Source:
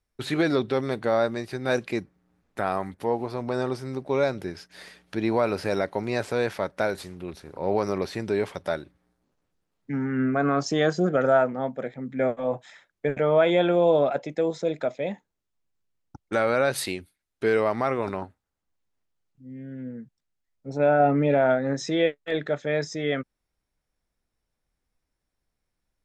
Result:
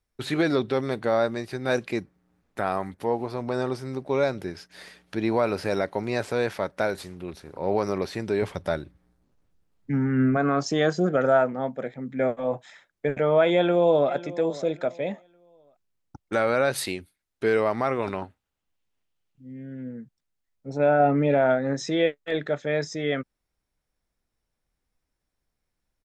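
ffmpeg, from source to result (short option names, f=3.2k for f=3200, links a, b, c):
-filter_complex "[0:a]asettb=1/sr,asplit=3[a][b][c];[a]atrim=end=8.424[d];[b]atrim=start=8.42:end=10.37,asetpts=PTS-STARTPTS,afade=t=in:d=0.004:c=qsin,afade=t=out:st=1.946:d=0.004:c=qsin,lowshelf=f=150:g=11.5[e];[c]atrim=start=10.366[f];[d][e]acrossfade=d=0.004:c1=hsin:c2=qsin[g];[g][f]acrossfade=d=0.004:c1=qsin:c2=hsin,asplit=2[h][i];[i]afade=t=in:st=13.53:d=0.01,afade=t=out:st=14.11:d=0.01,aecho=0:1:550|1100|1650:0.141254|0.0423761|0.0127128[j];[h][j]amix=inputs=2:normalize=0,asettb=1/sr,asplit=3[k][l][m];[k]atrim=end=17.994[n];[l]atrim=start=17.99:end=19.52,asetpts=PTS-STARTPTS,afade=t=in:d=0.004:c=qsin,afade=t=out:st=1.526:d=0.004:c=qsin,equalizer=f=2.9k:t=o:w=0.77:g=6.5[o];[m]atrim=start=19.516[p];[n][o]acrossfade=d=0.004:c1=hsin:c2=qsin[q];[q][p]acrossfade=d=0.004:c1=qsin:c2=hsin"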